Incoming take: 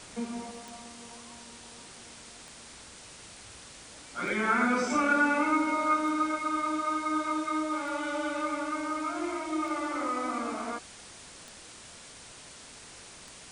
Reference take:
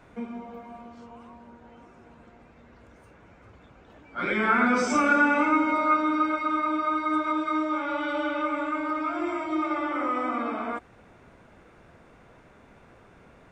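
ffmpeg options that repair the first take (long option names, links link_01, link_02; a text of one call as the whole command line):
ffmpeg -i in.wav -af "adeclick=threshold=4,afwtdn=0.005,asetnsamples=nb_out_samples=441:pad=0,asendcmd='0.51 volume volume 4dB',volume=0dB" out.wav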